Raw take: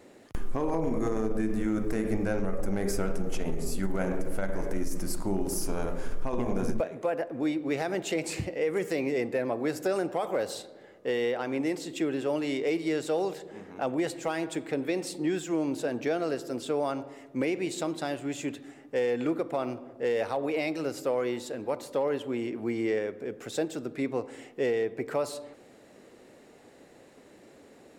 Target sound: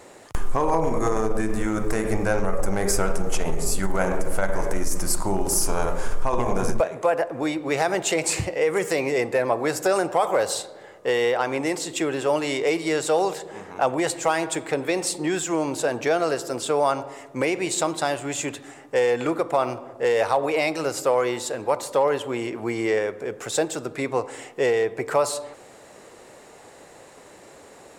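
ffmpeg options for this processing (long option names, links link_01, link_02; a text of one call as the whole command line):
ffmpeg -i in.wav -af "equalizer=frequency=250:width_type=o:width=1:gain=-8,equalizer=frequency=1000:width_type=o:width=1:gain=6,equalizer=frequency=8000:width_type=o:width=1:gain=7,volume=7.5dB" out.wav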